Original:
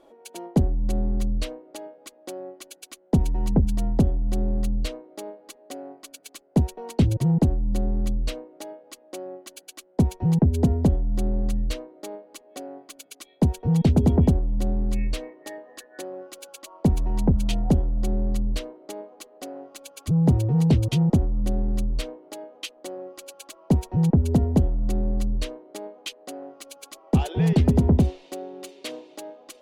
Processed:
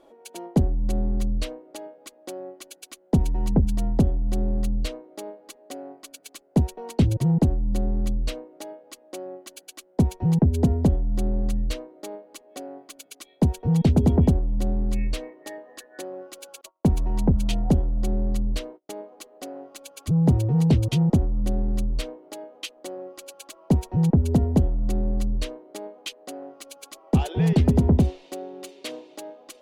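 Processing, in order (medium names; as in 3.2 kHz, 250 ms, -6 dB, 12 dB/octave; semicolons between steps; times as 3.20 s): 16.61–18.92 s: gate -41 dBFS, range -33 dB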